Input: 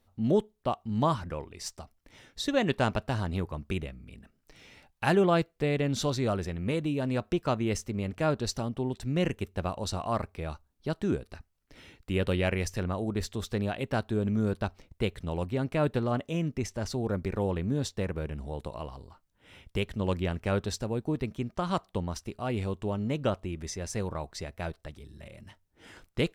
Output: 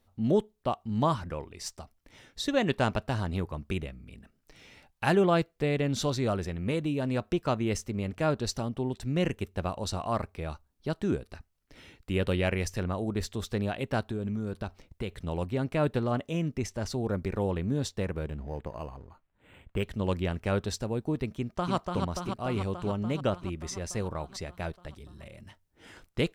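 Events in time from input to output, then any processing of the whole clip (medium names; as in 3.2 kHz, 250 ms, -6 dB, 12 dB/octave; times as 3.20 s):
14.06–15.19 s: compression, threshold -28 dBFS
18.25–19.83 s: decimation joined by straight lines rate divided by 8×
21.35–21.75 s: echo throw 290 ms, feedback 75%, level -3.5 dB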